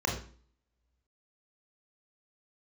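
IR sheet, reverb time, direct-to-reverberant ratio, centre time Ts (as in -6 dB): 0.45 s, -0.5 dB, 28 ms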